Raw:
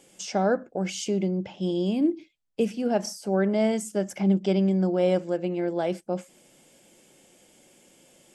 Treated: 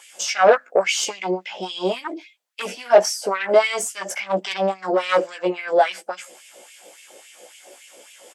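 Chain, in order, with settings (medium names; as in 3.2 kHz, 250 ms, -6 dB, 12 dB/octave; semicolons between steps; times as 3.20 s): doubling 16 ms -3.5 dB; Chebyshev shaper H 5 -9 dB, 8 -22 dB, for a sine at -8 dBFS; LFO high-pass sine 3.6 Hz 470–2500 Hz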